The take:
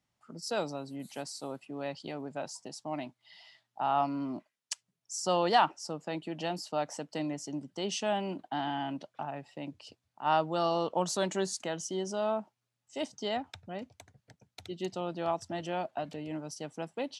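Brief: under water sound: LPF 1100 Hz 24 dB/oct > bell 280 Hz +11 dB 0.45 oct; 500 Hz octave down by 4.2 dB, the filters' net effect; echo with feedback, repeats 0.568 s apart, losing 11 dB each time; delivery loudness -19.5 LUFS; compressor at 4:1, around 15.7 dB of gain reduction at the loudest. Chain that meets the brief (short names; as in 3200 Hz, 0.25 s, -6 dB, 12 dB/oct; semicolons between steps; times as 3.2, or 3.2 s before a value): bell 500 Hz -7.5 dB; compressor 4:1, threshold -41 dBFS; LPF 1100 Hz 24 dB/oct; bell 280 Hz +11 dB 0.45 oct; feedback echo 0.568 s, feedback 28%, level -11 dB; gain +22 dB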